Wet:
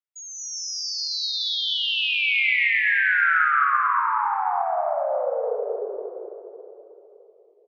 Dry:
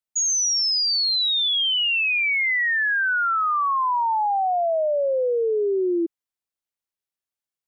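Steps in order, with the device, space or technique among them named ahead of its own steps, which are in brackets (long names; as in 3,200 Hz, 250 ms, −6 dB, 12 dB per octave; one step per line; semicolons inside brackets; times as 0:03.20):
Butterworth high-pass 420 Hz 72 dB per octave
0:02.84–0:03.77: dynamic equaliser 1,500 Hz, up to +5 dB, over −37 dBFS, Q 1.3
station announcement (band-pass filter 410–4,200 Hz; parametric band 2,200 Hz +5 dB 0.35 octaves; loudspeakers that aren't time-aligned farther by 55 metres −11 dB, 77 metres 0 dB; convolution reverb RT60 3.4 s, pre-delay 93 ms, DRR 1 dB)
level −8 dB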